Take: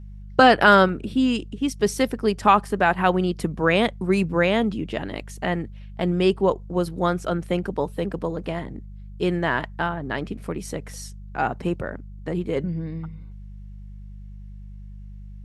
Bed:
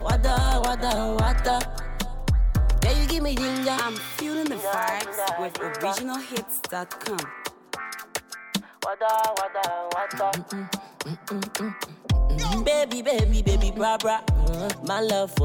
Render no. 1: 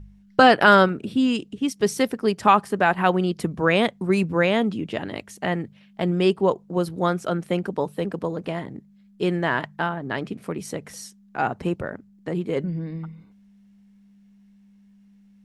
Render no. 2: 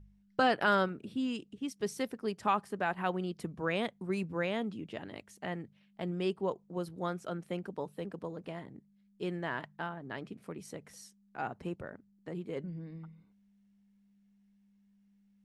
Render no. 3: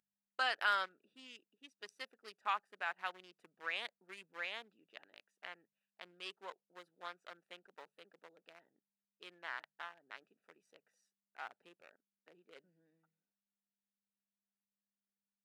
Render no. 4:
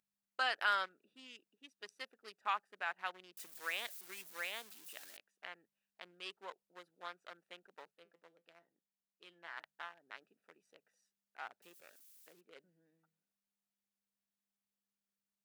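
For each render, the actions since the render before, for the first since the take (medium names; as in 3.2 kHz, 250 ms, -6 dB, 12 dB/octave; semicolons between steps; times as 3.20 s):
de-hum 50 Hz, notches 3
trim -13.5 dB
local Wiener filter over 41 samples; high-pass 1.4 kHz 12 dB/octave
3.37–5.17 s: zero-crossing glitches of -41 dBFS; 7.91–9.57 s: feedback comb 170 Hz, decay 0.19 s; 11.62–12.41 s: zero-crossing glitches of -53.5 dBFS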